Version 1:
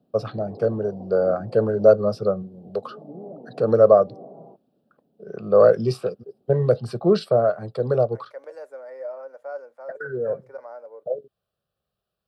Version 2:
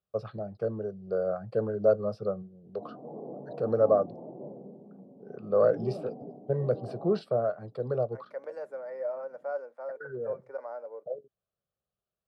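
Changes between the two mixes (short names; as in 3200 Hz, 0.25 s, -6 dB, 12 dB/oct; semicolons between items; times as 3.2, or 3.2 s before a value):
first voice -9.0 dB; background: entry +2.65 s; master: add high shelf 4400 Hz -10.5 dB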